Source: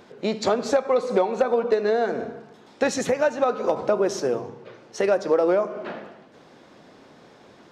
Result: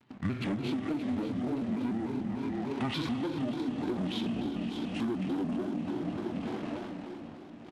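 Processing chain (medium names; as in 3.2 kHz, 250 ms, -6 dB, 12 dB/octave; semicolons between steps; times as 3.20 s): high-pass 200 Hz 6 dB/octave; two-band feedback delay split 720 Hz, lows 173 ms, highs 571 ms, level -8 dB; rotary cabinet horn 5.5 Hz, later 0.8 Hz, at 0.65 s; waveshaping leveller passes 3; treble shelf 2.5 kHz +5.5 dB; harmonic-percussive split percussive -8 dB; plate-style reverb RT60 4.6 s, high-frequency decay 0.85×, DRR 5 dB; compression 16:1, threshold -24 dBFS, peak gain reduction 13.5 dB; pitch shift -11 st; vibrato with a chosen wave square 3.4 Hz, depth 160 cents; trim -5 dB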